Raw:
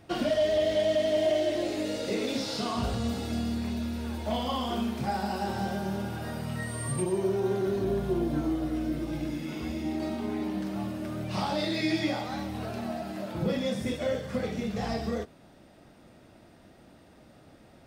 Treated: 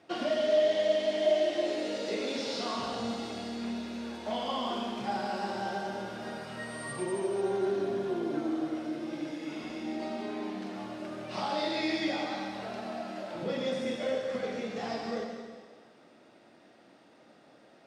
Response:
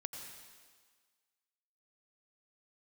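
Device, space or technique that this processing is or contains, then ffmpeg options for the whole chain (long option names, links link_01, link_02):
supermarket ceiling speaker: -filter_complex "[0:a]highpass=280,lowpass=6600[link_01];[1:a]atrim=start_sample=2205[link_02];[link_01][link_02]afir=irnorm=-1:irlink=0,volume=1dB"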